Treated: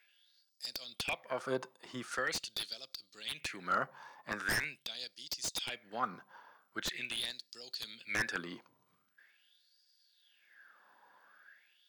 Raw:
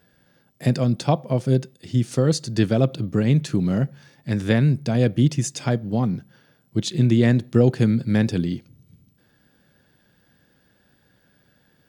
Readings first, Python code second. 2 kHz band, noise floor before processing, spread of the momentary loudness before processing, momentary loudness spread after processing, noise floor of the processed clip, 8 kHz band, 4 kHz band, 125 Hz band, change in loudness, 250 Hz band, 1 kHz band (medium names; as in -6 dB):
-3.0 dB, -62 dBFS, 8 LU, 12 LU, -75 dBFS, -8.5 dB, -4.0 dB, -35.0 dB, -17.0 dB, -28.5 dB, -7.0 dB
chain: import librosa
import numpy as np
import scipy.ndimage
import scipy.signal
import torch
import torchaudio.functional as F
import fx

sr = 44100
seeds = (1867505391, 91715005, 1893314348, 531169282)

y = fx.filter_lfo_highpass(x, sr, shape='sine', hz=0.43, low_hz=970.0, high_hz=4900.0, q=7.5)
y = 10.0 ** (-20.5 / 20.0) * (np.abs((y / 10.0 ** (-20.5 / 20.0) + 3.0) % 4.0 - 2.0) - 1.0)
y = fx.tilt_shelf(y, sr, db=8.5, hz=1100.0)
y = y * librosa.db_to_amplitude(-2.0)